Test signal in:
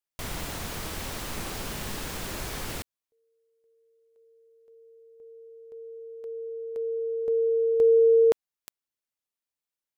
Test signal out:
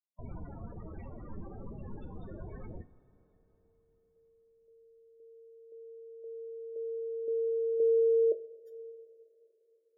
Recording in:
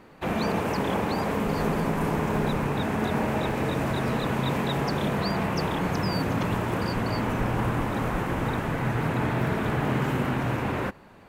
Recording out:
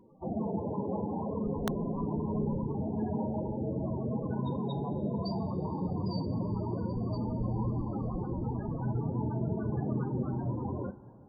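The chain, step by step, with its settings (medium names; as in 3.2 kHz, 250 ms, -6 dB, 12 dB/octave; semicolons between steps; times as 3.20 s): loudest bins only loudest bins 16; two-slope reverb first 0.32 s, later 4.2 s, from -18 dB, DRR 9 dB; integer overflow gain 15 dB; trim -5.5 dB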